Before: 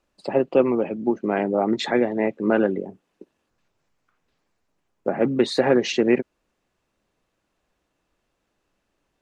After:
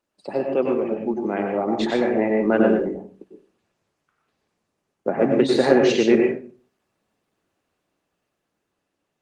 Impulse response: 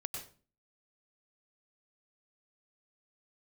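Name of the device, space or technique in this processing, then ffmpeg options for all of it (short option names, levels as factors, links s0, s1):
far-field microphone of a smart speaker: -filter_complex "[1:a]atrim=start_sample=2205[s0];[0:a][s0]afir=irnorm=-1:irlink=0,highpass=120,dynaudnorm=f=640:g=7:m=5.96,volume=0.841" -ar 48000 -c:a libopus -b:a 24k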